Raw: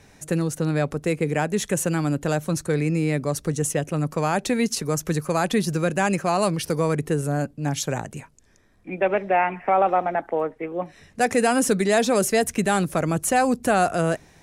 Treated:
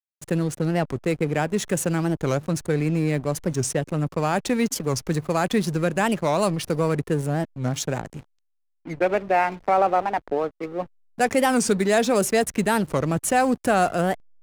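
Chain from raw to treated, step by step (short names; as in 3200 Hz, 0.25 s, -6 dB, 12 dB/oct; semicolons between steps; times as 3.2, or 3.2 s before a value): backlash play -31 dBFS; 8.02–8.93 low-pass opened by the level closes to 1800 Hz, open at -36.5 dBFS; record warp 45 rpm, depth 250 cents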